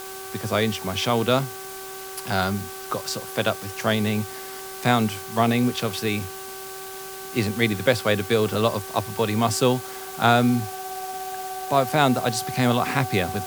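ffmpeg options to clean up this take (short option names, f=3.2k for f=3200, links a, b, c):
-af "bandreject=f=383.4:t=h:w=4,bandreject=f=766.8:t=h:w=4,bandreject=f=1.1502k:t=h:w=4,bandreject=f=1.5336k:t=h:w=4,bandreject=f=750:w=30,afftdn=nr=30:nf=-36"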